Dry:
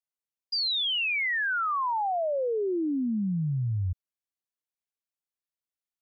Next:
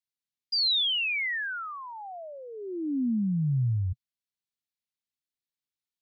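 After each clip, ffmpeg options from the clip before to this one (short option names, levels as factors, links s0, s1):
-af "equalizer=f=125:t=o:w=1:g=7,equalizer=f=250:t=o:w=1:g=7,equalizer=f=500:t=o:w=1:g=-10,equalizer=f=1000:t=o:w=1:g=-7,equalizer=f=2000:t=o:w=1:g=3,equalizer=f=4000:t=o:w=1:g=8,volume=0.562"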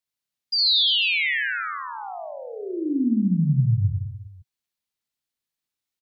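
-af "aecho=1:1:60|135|228.8|345.9|492.4:0.631|0.398|0.251|0.158|0.1,volume=1.58"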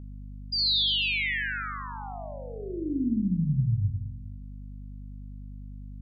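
-af "aeval=exprs='val(0)+0.02*(sin(2*PI*50*n/s)+sin(2*PI*2*50*n/s)/2+sin(2*PI*3*50*n/s)/3+sin(2*PI*4*50*n/s)/4+sin(2*PI*5*50*n/s)/5)':c=same,volume=0.531"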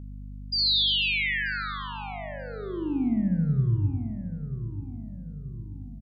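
-filter_complex "[0:a]asplit=2[s0][s1];[s1]adelay=934,lowpass=f=1000:p=1,volume=0.316,asplit=2[s2][s3];[s3]adelay=934,lowpass=f=1000:p=1,volume=0.47,asplit=2[s4][s5];[s5]adelay=934,lowpass=f=1000:p=1,volume=0.47,asplit=2[s6][s7];[s7]adelay=934,lowpass=f=1000:p=1,volume=0.47,asplit=2[s8][s9];[s9]adelay=934,lowpass=f=1000:p=1,volume=0.47[s10];[s0][s2][s4][s6][s8][s10]amix=inputs=6:normalize=0,volume=1.19"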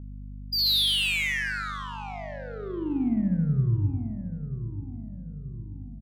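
-af "adynamicsmooth=sensitivity=6:basefreq=1900"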